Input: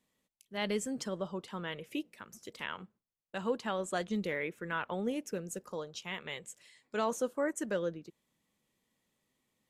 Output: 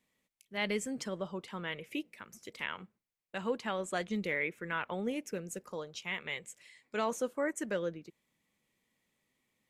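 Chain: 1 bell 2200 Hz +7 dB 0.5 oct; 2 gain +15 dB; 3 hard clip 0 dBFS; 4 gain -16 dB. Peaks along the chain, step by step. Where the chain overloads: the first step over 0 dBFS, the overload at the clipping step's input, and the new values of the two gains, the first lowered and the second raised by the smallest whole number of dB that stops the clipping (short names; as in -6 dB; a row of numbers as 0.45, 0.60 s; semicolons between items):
-18.5, -3.5, -3.5, -19.5 dBFS; no overload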